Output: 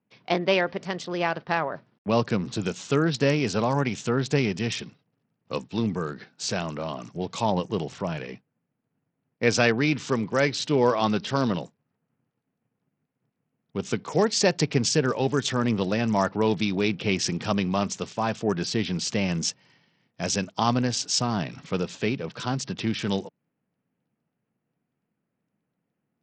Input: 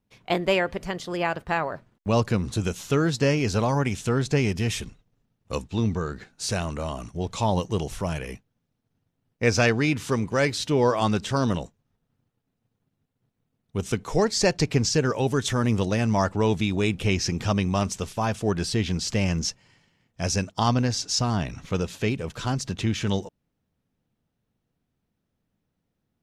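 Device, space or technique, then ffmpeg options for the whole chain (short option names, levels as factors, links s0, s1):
Bluetooth headset: -filter_complex "[0:a]asettb=1/sr,asplit=3[s0][s1][s2];[s0]atrim=end=7.504[s3];[s1]atrim=start=7.5:end=9.44,asetpts=PTS-STARTPTS,afade=t=in:d=0.004:c=qsin,afade=t=out:st=1.936:d=0.004:c=qsin,highshelf=f=3600:g=-5[s4];[s2]atrim=start=9.436[s5];[s3][s4]acrossfade=d=0.004:c1=hsin:c2=qsin[s6];[s6][s5]acrossfade=d=0.004:c1=qsin:c2=hsin,highpass=f=130:w=0.5412,highpass=f=130:w=1.3066,aresample=16000,aresample=44100" -ar 44100 -c:a sbc -b:a 64k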